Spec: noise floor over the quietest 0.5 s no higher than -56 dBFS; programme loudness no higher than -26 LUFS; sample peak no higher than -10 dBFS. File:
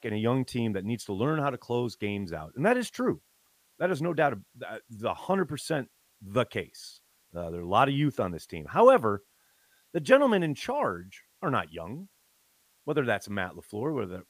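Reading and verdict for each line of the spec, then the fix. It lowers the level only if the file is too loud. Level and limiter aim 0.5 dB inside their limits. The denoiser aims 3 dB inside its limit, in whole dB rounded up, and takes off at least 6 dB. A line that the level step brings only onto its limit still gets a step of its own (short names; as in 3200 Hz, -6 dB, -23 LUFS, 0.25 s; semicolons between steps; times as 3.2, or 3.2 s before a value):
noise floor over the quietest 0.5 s -67 dBFS: OK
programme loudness -28.5 LUFS: OK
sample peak -6.5 dBFS: fail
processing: limiter -10.5 dBFS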